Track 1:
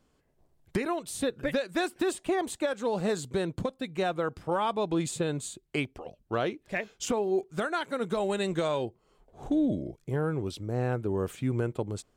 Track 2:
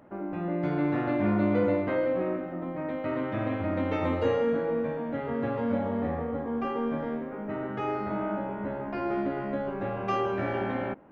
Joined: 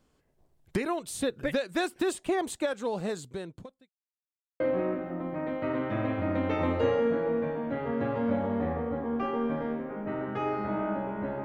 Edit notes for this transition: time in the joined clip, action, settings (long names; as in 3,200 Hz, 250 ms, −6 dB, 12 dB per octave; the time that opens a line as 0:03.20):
track 1
0:02.62–0:03.89: fade out linear
0:03.89–0:04.60: silence
0:04.60: continue with track 2 from 0:02.02